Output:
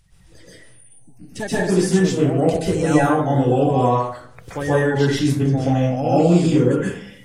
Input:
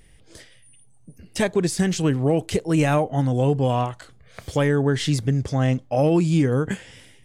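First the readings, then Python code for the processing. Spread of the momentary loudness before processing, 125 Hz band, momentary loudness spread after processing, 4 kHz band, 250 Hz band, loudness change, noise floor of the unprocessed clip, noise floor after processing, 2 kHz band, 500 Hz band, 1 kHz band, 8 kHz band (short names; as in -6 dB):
8 LU, +1.5 dB, 11 LU, +0.5 dB, +4.0 dB, +3.5 dB, -52 dBFS, -46 dBFS, +3.5 dB, +4.5 dB, +6.0 dB, +1.5 dB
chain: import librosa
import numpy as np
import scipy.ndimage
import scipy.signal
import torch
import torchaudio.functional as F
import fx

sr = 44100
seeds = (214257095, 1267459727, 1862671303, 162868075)

y = fx.spec_quant(x, sr, step_db=30)
y = fx.rev_plate(y, sr, seeds[0], rt60_s=0.6, hf_ratio=0.55, predelay_ms=115, drr_db=-8.5)
y = y * librosa.db_to_amplitude(-5.5)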